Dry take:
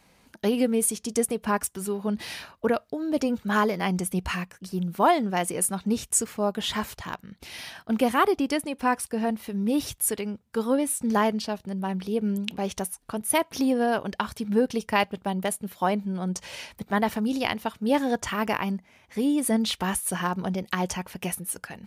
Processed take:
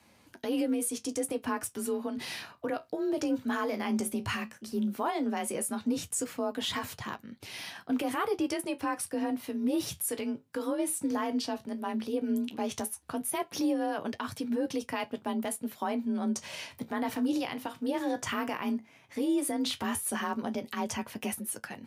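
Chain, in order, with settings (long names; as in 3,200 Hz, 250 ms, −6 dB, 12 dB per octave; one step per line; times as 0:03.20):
brickwall limiter −20.5 dBFS, peak gain reduction 11 dB
frequency shifter +36 Hz
flanger 0.14 Hz, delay 9.3 ms, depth 8.7 ms, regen −53%
level +2 dB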